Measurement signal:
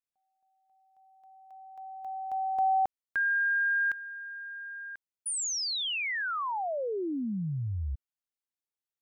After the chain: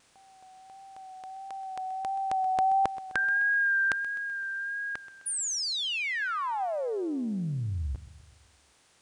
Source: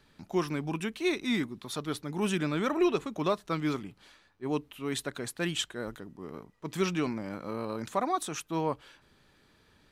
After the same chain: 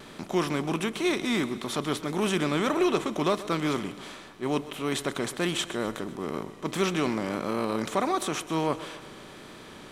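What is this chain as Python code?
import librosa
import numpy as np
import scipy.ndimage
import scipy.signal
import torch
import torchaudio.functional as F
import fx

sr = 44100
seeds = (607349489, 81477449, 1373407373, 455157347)

y = fx.bin_compress(x, sr, power=0.6)
y = fx.echo_feedback(y, sr, ms=128, feedback_pct=59, wet_db=-16.5)
y = fx.vibrato(y, sr, rate_hz=1.5, depth_cents=29.0)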